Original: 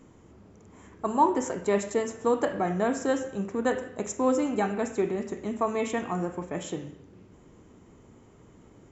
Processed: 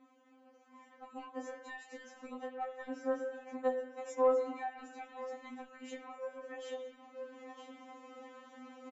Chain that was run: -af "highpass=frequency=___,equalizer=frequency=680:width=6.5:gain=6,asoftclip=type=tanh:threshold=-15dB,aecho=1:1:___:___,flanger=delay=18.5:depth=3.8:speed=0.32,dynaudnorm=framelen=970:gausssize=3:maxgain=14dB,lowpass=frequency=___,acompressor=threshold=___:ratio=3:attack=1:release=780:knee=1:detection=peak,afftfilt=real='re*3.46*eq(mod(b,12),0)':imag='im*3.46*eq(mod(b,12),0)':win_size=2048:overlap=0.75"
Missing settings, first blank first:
440, 958, 0.075, 3800, -37dB